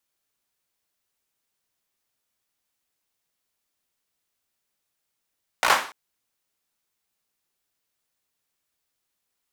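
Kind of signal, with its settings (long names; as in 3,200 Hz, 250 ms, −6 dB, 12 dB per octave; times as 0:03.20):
synth clap length 0.29 s, bursts 5, apart 17 ms, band 1,100 Hz, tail 0.42 s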